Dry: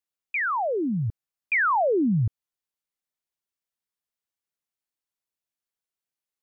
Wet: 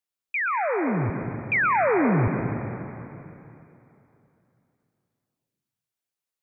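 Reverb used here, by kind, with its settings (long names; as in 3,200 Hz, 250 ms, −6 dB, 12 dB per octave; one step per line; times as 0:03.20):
dense smooth reverb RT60 3 s, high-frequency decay 0.95×, pre-delay 110 ms, DRR 4 dB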